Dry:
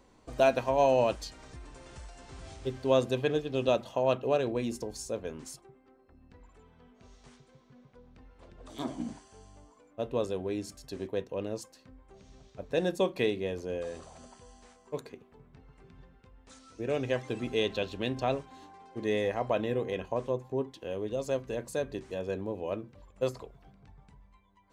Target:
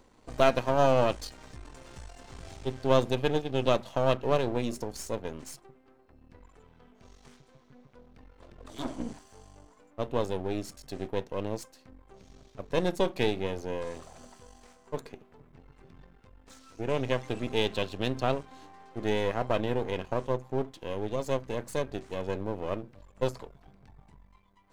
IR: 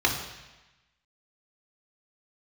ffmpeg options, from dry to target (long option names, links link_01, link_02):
-af "aeval=exprs='if(lt(val(0),0),0.251*val(0),val(0))':channel_layout=same,volume=4dB"